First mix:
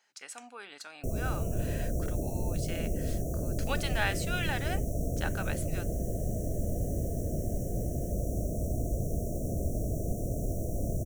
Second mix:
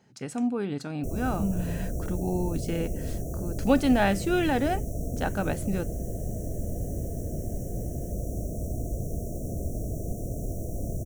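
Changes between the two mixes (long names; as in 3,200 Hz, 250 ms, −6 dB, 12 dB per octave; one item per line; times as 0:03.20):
speech: remove high-pass filter 1,300 Hz 12 dB per octave
master: add parametric band 590 Hz −2.5 dB 0.31 octaves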